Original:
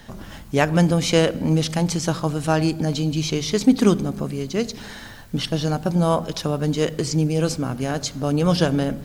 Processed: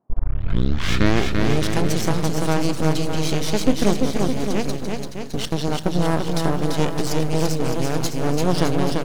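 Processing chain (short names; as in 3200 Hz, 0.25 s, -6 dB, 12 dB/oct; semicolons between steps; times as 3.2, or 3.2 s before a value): tape start at the beginning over 1.65 s; half-wave rectifier; in parallel at 0 dB: compressor, threshold -28 dBFS, peak gain reduction 16.5 dB; on the sum: band noise 85–880 Hz -55 dBFS; gate -30 dBFS, range -17 dB; on a send: bouncing-ball echo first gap 0.34 s, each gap 0.8×, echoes 5; on the sum: gain -1 dB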